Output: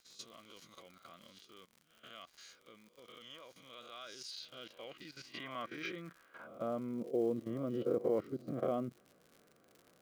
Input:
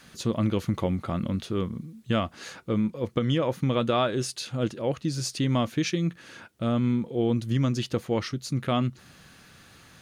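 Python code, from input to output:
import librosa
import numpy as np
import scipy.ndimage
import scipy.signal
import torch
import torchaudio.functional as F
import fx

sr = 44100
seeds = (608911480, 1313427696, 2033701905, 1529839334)

y = fx.spec_swells(x, sr, rise_s=0.55)
y = fx.peak_eq(y, sr, hz=8200.0, db=-14.0, octaves=1.4)
y = fx.level_steps(y, sr, step_db=15)
y = fx.filter_sweep_bandpass(y, sr, from_hz=6600.0, to_hz=490.0, start_s=3.89, end_s=7.16, q=1.5)
y = fx.quant_companded(y, sr, bits=8)
y = fx.notch_comb(y, sr, f0_hz=880.0)
y = fx.dmg_crackle(y, sr, seeds[0], per_s=85.0, level_db=-50.0)
y = y * 10.0 ** (1.5 / 20.0)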